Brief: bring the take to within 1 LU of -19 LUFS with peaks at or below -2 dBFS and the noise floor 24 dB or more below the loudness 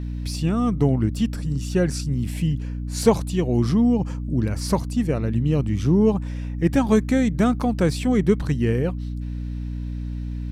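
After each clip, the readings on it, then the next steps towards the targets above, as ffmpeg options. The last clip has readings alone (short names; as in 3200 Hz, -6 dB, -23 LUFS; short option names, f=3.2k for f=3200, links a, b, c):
hum 60 Hz; harmonics up to 300 Hz; hum level -26 dBFS; loudness -22.5 LUFS; peak -4.5 dBFS; loudness target -19.0 LUFS
-> -af "bandreject=f=60:t=h:w=6,bandreject=f=120:t=h:w=6,bandreject=f=180:t=h:w=6,bandreject=f=240:t=h:w=6,bandreject=f=300:t=h:w=6"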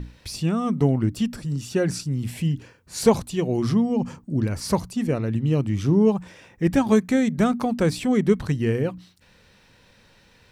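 hum none; loudness -23.0 LUFS; peak -5.0 dBFS; loudness target -19.0 LUFS
-> -af "volume=4dB,alimiter=limit=-2dB:level=0:latency=1"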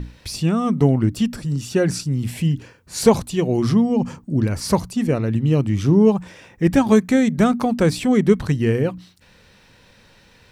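loudness -19.0 LUFS; peak -2.0 dBFS; noise floor -52 dBFS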